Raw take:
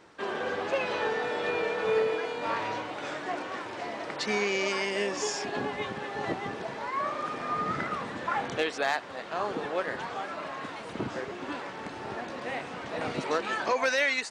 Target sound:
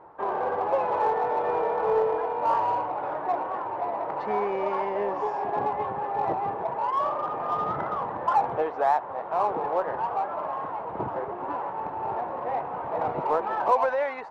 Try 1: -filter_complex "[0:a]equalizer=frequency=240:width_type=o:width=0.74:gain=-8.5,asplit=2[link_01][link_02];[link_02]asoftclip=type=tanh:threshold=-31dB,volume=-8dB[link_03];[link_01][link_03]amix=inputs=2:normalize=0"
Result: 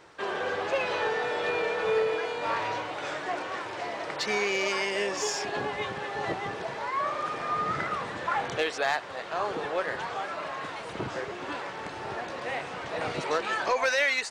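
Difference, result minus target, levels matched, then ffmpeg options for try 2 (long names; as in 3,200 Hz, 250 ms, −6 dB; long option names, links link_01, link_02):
1,000 Hz band −4.0 dB
-filter_complex "[0:a]lowpass=frequency=900:width_type=q:width=3.3,equalizer=frequency=240:width_type=o:width=0.74:gain=-8.5,asplit=2[link_01][link_02];[link_02]asoftclip=type=tanh:threshold=-31dB,volume=-8dB[link_03];[link_01][link_03]amix=inputs=2:normalize=0"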